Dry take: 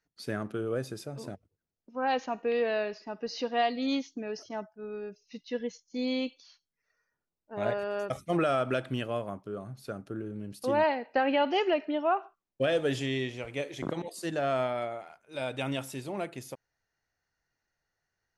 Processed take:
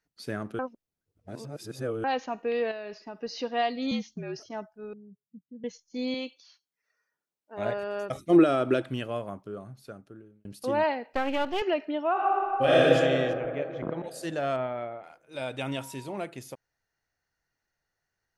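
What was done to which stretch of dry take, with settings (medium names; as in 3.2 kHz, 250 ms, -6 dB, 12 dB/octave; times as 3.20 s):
0.59–2.04 s: reverse
2.71–3.19 s: compression, threshold -34 dBFS
3.91–4.40 s: frequency shift -53 Hz
4.93–5.64 s: Butterworth band-pass 150 Hz, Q 1.3
6.14–7.59 s: high-pass 390 Hz 6 dB/octave
8.13–8.82 s: small resonant body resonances 330/3800 Hz, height 13 dB, ringing for 30 ms
9.46–10.45 s: fade out
11.13–11.62 s: partial rectifier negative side -12 dB
12.12–12.82 s: reverb throw, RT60 2.9 s, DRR -9.5 dB
13.33–14.04 s: low-pass 1.9 kHz
14.56–15.04 s: distance through air 390 m
15.68–16.16 s: whistle 950 Hz -48 dBFS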